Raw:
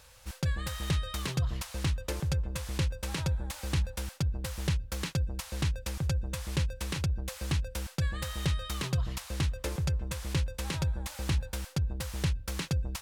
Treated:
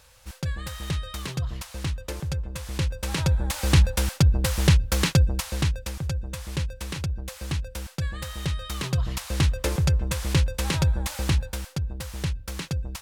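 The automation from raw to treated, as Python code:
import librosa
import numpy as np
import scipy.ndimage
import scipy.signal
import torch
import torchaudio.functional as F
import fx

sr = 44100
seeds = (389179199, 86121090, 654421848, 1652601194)

y = fx.gain(x, sr, db=fx.line((2.54, 1.0), (3.71, 12.0), (5.16, 12.0), (6.01, 1.5), (8.51, 1.5), (9.45, 8.5), (11.14, 8.5), (11.8, 1.5)))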